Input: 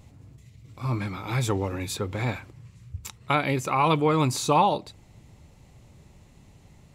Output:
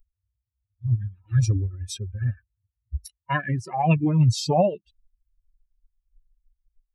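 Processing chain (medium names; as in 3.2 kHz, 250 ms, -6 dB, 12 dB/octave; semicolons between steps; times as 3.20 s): expander on every frequency bin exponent 3; resonant low shelf 190 Hz +8 dB, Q 1.5; formant shift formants -5 st; trim +5 dB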